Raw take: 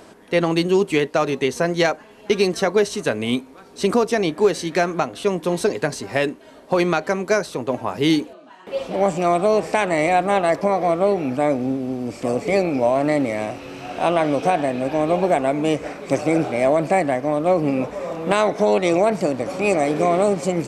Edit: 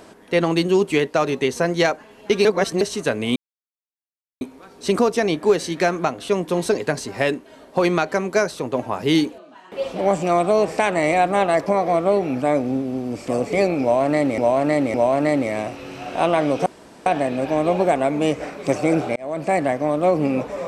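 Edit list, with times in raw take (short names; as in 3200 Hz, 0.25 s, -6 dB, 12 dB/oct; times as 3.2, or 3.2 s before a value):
2.45–2.81 reverse
3.36 insert silence 1.05 s
12.77–13.33 loop, 3 plays
14.49 insert room tone 0.40 s
16.59–17.04 fade in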